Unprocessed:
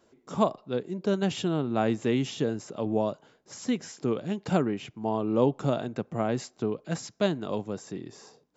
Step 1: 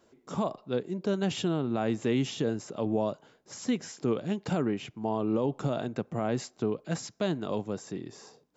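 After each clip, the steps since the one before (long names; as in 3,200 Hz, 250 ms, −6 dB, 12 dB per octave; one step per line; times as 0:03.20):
brickwall limiter −18.5 dBFS, peak gain reduction 9.5 dB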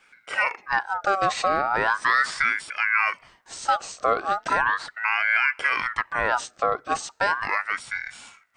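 ring modulator whose carrier an LFO sweeps 1,400 Hz, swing 35%, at 0.37 Hz
level +9 dB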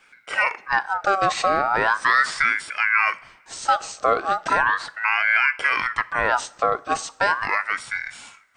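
convolution reverb, pre-delay 3 ms, DRR 16.5 dB
level +2.5 dB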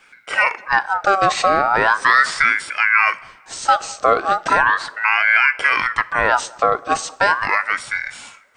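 feedback echo with a band-pass in the loop 205 ms, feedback 59%, band-pass 490 Hz, level −23 dB
level +4.5 dB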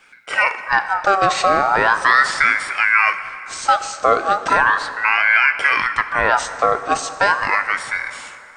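dense smooth reverb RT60 3.2 s, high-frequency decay 0.7×, DRR 11.5 dB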